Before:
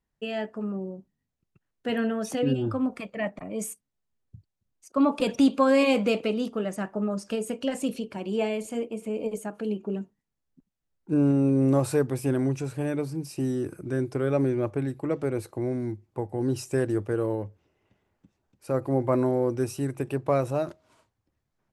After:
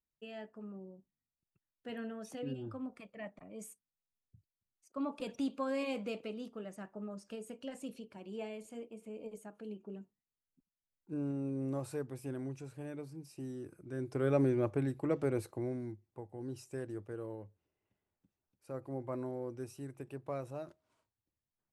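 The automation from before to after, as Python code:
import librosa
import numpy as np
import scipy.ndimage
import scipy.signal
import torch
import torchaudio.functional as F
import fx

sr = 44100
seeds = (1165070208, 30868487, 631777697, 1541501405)

y = fx.gain(x, sr, db=fx.line((13.85, -15.5), (14.26, -5.0), (15.36, -5.0), (16.22, -16.0)))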